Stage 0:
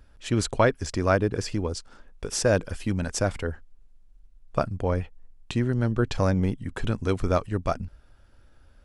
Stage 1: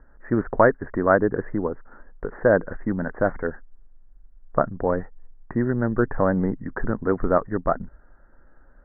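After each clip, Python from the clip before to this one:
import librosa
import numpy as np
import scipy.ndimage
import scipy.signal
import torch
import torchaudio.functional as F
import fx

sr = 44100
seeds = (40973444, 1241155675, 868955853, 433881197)

y = scipy.signal.sosfilt(scipy.signal.butter(16, 1900.0, 'lowpass', fs=sr, output='sos'), x)
y = fx.peak_eq(y, sr, hz=84.0, db=-15.0, octaves=1.0)
y = y * 10.0 ** (5.0 / 20.0)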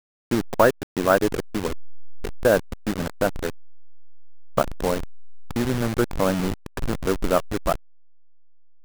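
y = fx.delta_hold(x, sr, step_db=-21.5)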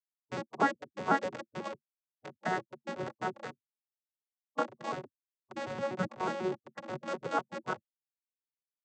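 y = fx.vocoder_arp(x, sr, chord='bare fifth', root=54, every_ms=123)
y = fx.spec_gate(y, sr, threshold_db=-10, keep='weak')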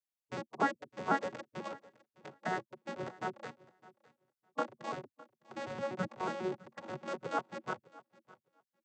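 y = fx.echo_feedback(x, sr, ms=608, feedback_pct=15, wet_db=-21.0)
y = y * 10.0 ** (-3.0 / 20.0)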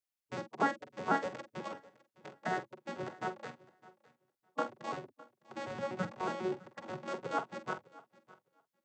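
y = fx.doubler(x, sr, ms=46.0, db=-11)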